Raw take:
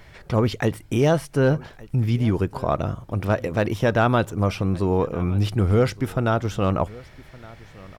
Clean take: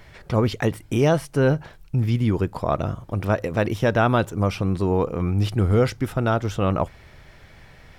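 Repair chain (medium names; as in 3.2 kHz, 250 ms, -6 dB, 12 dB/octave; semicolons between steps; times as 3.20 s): clip repair -9.5 dBFS; inverse comb 1165 ms -22 dB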